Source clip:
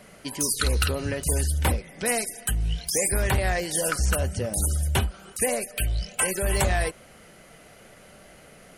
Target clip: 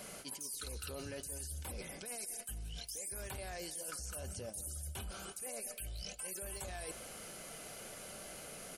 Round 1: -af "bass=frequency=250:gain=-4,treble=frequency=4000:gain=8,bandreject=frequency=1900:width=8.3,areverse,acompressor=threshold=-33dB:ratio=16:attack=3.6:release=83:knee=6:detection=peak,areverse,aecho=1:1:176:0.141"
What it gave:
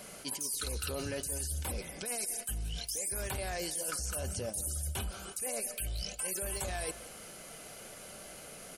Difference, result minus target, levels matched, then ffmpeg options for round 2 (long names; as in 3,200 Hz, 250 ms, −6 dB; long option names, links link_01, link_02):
downward compressor: peak gain reduction −7.5 dB
-af "bass=frequency=250:gain=-4,treble=frequency=4000:gain=8,bandreject=frequency=1900:width=8.3,areverse,acompressor=threshold=-41dB:ratio=16:attack=3.6:release=83:knee=6:detection=peak,areverse,aecho=1:1:176:0.141"